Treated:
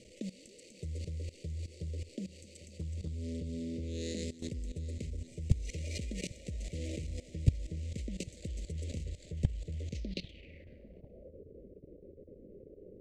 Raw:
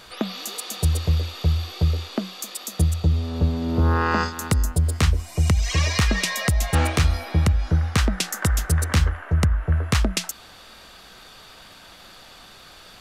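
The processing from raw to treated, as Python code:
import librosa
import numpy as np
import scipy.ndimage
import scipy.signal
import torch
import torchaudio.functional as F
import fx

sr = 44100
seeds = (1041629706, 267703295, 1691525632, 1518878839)

y = scipy.signal.medfilt(x, 25)
y = scipy.signal.sosfilt(scipy.signal.cheby1(4, 1.0, [570.0, 2000.0], 'bandstop', fs=sr, output='sos'), y)
y = fx.low_shelf(y, sr, hz=130.0, db=-5.5)
y = fx.level_steps(y, sr, step_db=19)
y = fx.echo_feedback(y, sr, ms=797, feedback_pct=58, wet_db=-17.5)
y = fx.filter_sweep_lowpass(y, sr, from_hz=7700.0, to_hz=430.0, start_s=9.85, end_s=11.41, q=3.7)
y = fx.upward_expand(y, sr, threshold_db=-35.0, expansion=1.5)
y = F.gain(torch.from_numpy(y), 5.0).numpy()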